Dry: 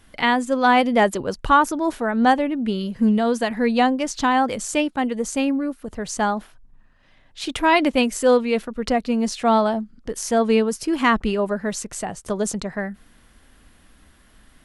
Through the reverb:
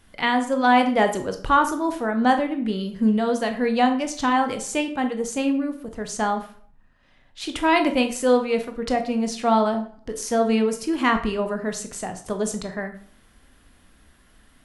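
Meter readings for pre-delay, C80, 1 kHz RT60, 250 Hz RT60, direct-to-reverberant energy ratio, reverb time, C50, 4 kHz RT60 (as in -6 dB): 16 ms, 14.5 dB, 0.50 s, 0.50 s, 6.0 dB, 0.50 s, 10.5 dB, 0.40 s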